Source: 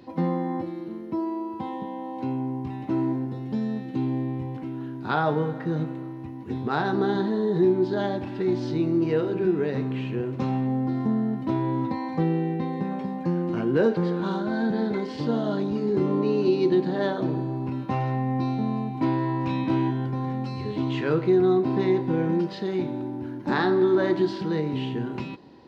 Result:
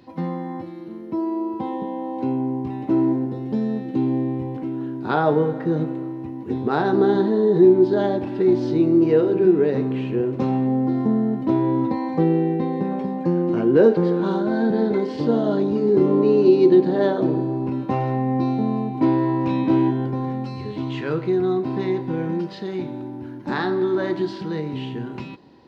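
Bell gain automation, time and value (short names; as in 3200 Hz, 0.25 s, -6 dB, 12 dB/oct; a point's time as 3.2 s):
bell 410 Hz 1.9 oct
0.71 s -3 dB
1.47 s +8 dB
20.1 s +8 dB
20.77 s -1 dB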